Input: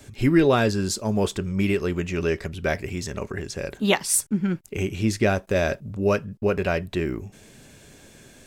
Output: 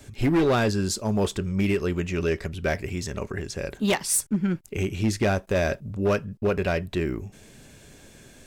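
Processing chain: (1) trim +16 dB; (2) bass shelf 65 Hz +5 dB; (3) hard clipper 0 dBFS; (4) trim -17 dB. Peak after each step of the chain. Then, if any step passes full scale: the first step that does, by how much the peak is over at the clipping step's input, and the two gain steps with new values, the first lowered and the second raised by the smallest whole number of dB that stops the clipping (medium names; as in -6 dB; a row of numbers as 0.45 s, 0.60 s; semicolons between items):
+9.5 dBFS, +9.5 dBFS, 0.0 dBFS, -17.0 dBFS; step 1, 9.5 dB; step 1 +6 dB, step 4 -7 dB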